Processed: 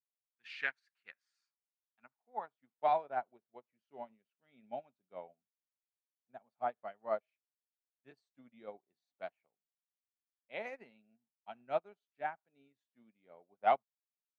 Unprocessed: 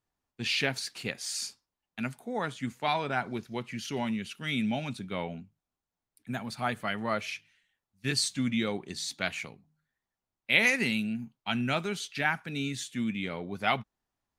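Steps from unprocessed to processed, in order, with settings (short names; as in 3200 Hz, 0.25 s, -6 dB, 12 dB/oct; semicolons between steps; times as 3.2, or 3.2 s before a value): band-pass sweep 1600 Hz -> 660 Hz, 1.03–2.89; upward expander 2.5:1, over -53 dBFS; gain +5 dB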